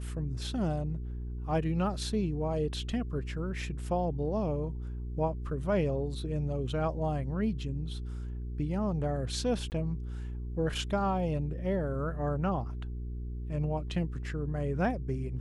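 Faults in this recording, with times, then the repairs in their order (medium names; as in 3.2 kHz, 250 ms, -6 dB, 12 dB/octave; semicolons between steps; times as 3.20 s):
hum 60 Hz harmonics 7 -37 dBFS
9.70–9.72 s: dropout 19 ms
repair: de-hum 60 Hz, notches 7; interpolate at 9.70 s, 19 ms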